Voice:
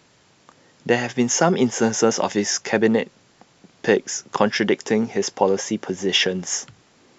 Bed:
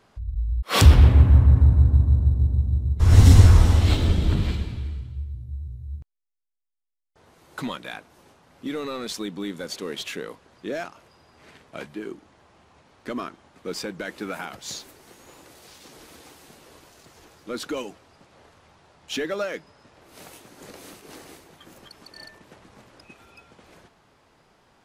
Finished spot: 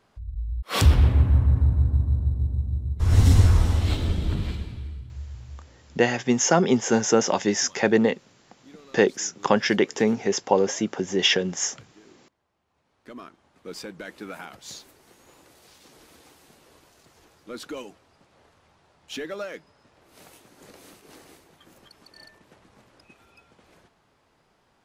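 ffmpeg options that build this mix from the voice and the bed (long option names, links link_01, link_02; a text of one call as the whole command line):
ffmpeg -i stem1.wav -i stem2.wav -filter_complex "[0:a]adelay=5100,volume=-1.5dB[link_01];[1:a]volume=9.5dB,afade=type=out:start_time=5.47:duration=0.21:silence=0.177828,afade=type=in:start_time=12.63:duration=1.19:silence=0.199526[link_02];[link_01][link_02]amix=inputs=2:normalize=0" out.wav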